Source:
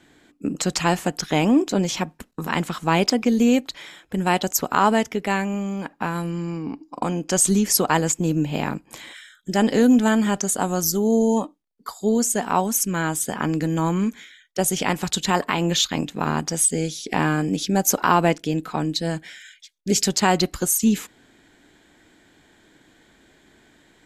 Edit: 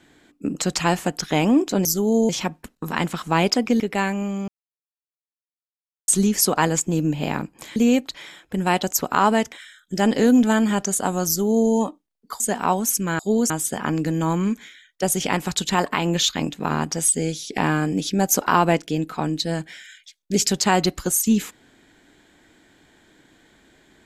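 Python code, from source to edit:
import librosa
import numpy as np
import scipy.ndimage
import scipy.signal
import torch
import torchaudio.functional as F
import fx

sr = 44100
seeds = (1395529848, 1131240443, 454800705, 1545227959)

y = fx.edit(x, sr, fx.move(start_s=3.36, length_s=1.76, to_s=9.08),
    fx.silence(start_s=5.8, length_s=1.6),
    fx.duplicate(start_s=10.83, length_s=0.44, to_s=1.85),
    fx.move(start_s=11.96, length_s=0.31, to_s=13.06), tone=tone)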